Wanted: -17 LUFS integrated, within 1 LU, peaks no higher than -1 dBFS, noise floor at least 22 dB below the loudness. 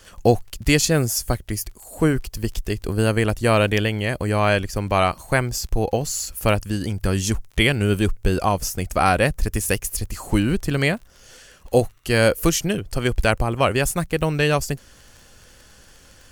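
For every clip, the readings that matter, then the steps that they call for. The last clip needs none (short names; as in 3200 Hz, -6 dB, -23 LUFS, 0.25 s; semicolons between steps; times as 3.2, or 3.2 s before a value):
ticks 21/s; loudness -21.5 LUFS; peak -2.0 dBFS; loudness target -17.0 LUFS
-> de-click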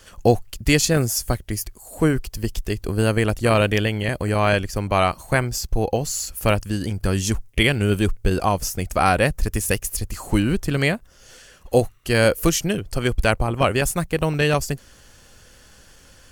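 ticks 0.49/s; loudness -21.5 LUFS; peak -2.0 dBFS; loudness target -17.0 LUFS
-> gain +4.5 dB; limiter -1 dBFS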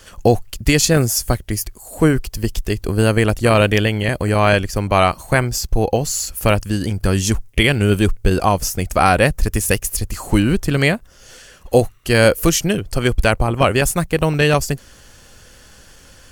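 loudness -17.5 LUFS; peak -1.0 dBFS; noise floor -45 dBFS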